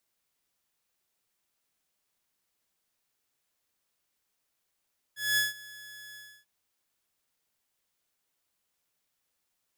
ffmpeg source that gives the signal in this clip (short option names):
-f lavfi -i "aevalsrc='0.1*(2*mod(1700*t,1)-1)':d=1.29:s=44100,afade=t=in:d=0.212,afade=t=out:st=0.212:d=0.159:silence=0.0794,afade=t=out:st=1:d=0.29"